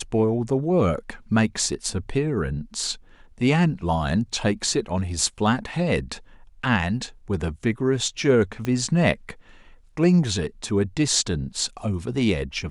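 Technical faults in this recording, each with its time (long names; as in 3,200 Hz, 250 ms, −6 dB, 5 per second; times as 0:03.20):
0:08.65: click −14 dBFS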